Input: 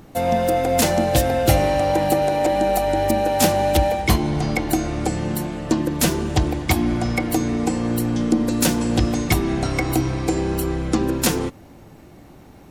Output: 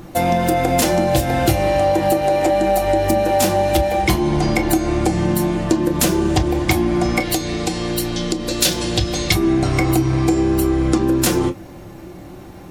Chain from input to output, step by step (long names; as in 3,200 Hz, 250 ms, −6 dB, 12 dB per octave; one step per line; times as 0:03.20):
convolution reverb, pre-delay 3 ms, DRR 4 dB
downward compressor, threshold −19 dBFS, peak gain reduction 11 dB
0:07.20–0:09.35: octave-band graphic EQ 250/1,000/4,000 Hz −9/−6/+9 dB
level +6 dB